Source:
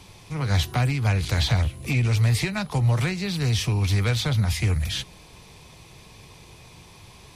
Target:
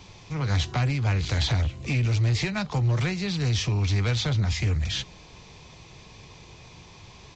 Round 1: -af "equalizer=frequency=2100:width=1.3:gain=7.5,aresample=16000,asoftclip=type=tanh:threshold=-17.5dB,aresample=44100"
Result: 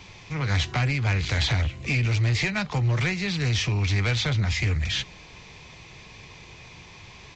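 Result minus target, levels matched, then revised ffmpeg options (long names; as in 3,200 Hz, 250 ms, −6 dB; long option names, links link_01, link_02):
2,000 Hz band +5.0 dB
-af "aresample=16000,asoftclip=type=tanh:threshold=-17.5dB,aresample=44100"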